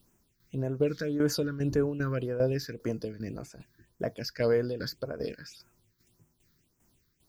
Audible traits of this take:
a quantiser's noise floor 12 bits, dither triangular
phaser sweep stages 6, 1.8 Hz, lowest notch 710–4,100 Hz
tremolo saw down 2.5 Hz, depth 70%

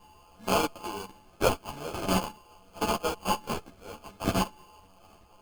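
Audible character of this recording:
a buzz of ramps at a fixed pitch in blocks of 16 samples
phaser sweep stages 8, 0.44 Hz, lowest notch 690–2,100 Hz
aliases and images of a low sample rate 1,900 Hz, jitter 0%
a shimmering, thickened sound

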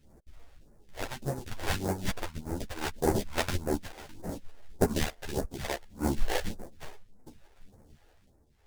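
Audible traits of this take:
aliases and images of a low sample rate 1,200 Hz, jitter 20%
phaser sweep stages 2, 1.7 Hz, lowest notch 150–3,100 Hz
tremolo triangle 0.68 Hz, depth 75%
a shimmering, thickened sound

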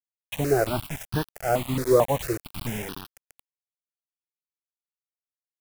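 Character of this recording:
a quantiser's noise floor 6 bits, dither none
notches that jump at a steady rate 4.5 Hz 780–2,100 Hz

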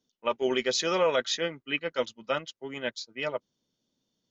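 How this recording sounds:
background noise floor −83 dBFS
spectral slope −2.5 dB per octave

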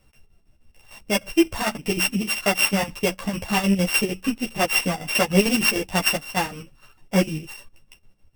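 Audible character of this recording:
a buzz of ramps at a fixed pitch in blocks of 16 samples
chopped level 6.6 Hz, depth 60%, duty 65%
a shimmering, thickened sound

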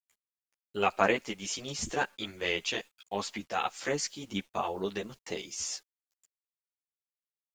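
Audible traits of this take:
tremolo saw up 0.87 Hz, depth 40%
a quantiser's noise floor 10 bits, dither none
a shimmering, thickened sound

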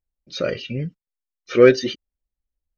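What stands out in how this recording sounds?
background noise floor −90 dBFS
spectral slope −4.5 dB per octave

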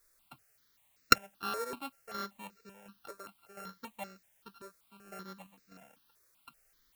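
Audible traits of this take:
a buzz of ramps at a fixed pitch in blocks of 32 samples
chopped level 1.4 Hz, depth 60%, duty 65%
a quantiser's noise floor 12 bits, dither triangular
notches that jump at a steady rate 5.2 Hz 800–3,200 Hz

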